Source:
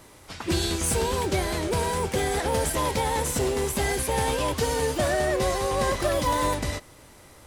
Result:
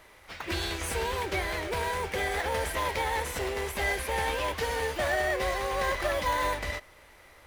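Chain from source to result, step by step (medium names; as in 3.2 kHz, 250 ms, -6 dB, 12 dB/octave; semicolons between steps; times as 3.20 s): graphic EQ 125/250/2000/8000 Hz -10/-10/+9/-7 dB; in parallel at -9.5 dB: sample-and-hold 17×; on the sum: trim -5.5 dB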